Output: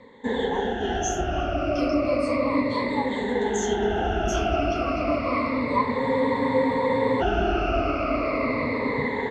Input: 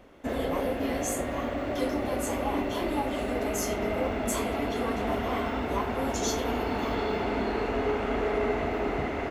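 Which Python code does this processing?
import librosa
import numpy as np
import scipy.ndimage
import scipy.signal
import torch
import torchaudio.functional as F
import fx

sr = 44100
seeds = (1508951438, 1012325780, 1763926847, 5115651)

y = fx.spec_ripple(x, sr, per_octave=0.99, drift_hz=-0.33, depth_db=23)
y = scipy.signal.sosfilt(scipy.signal.butter(4, 5800.0, 'lowpass', fs=sr, output='sos'), y)
y = fx.spec_freeze(y, sr, seeds[0], at_s=6.01, hold_s=1.19)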